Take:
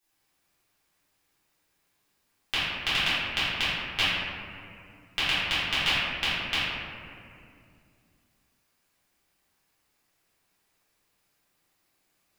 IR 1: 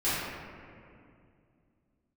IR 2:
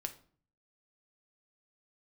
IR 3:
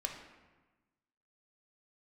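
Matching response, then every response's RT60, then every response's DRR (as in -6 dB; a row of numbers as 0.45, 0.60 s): 1; 2.4, 0.50, 1.2 s; -14.5, 6.5, 1.5 dB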